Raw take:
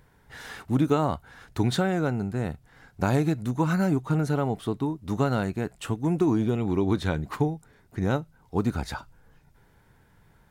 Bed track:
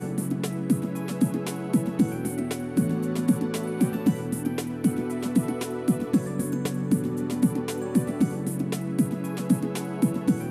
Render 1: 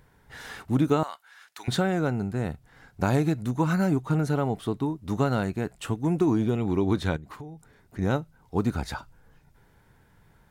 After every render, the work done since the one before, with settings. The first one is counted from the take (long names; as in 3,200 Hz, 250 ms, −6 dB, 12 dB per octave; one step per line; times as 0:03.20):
0:01.03–0:01.68: high-pass filter 1,400 Hz
0:07.16–0:07.99: downward compressor 5 to 1, threshold −39 dBFS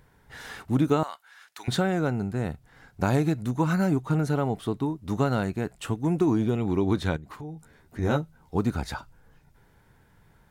0:07.41–0:08.57: double-tracking delay 13 ms −4 dB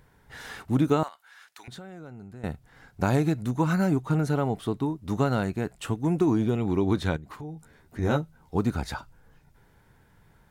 0:01.08–0:02.44: downward compressor 3 to 1, threshold −45 dBFS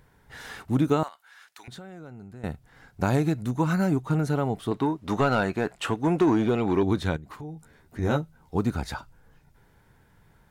0:04.71–0:06.83: mid-hump overdrive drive 16 dB, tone 2,600 Hz, clips at −10.5 dBFS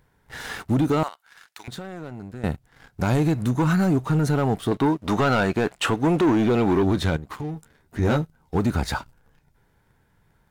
leveller curve on the samples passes 2
brickwall limiter −14.5 dBFS, peak gain reduction 4 dB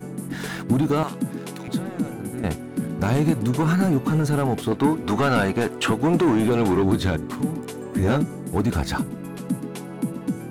mix in bed track −3.5 dB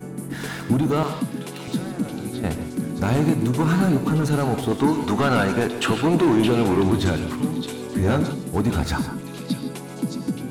echo through a band-pass that steps 619 ms, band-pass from 3,600 Hz, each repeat 0.7 octaves, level −3 dB
reverb whose tail is shaped and stops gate 180 ms rising, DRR 8 dB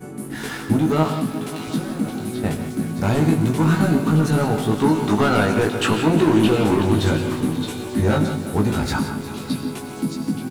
double-tracking delay 19 ms −3 dB
feedback echo at a low word length 178 ms, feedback 80%, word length 7 bits, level −13.5 dB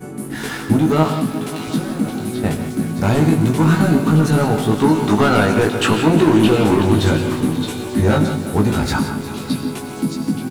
level +3.5 dB
brickwall limiter −3 dBFS, peak gain reduction 1.5 dB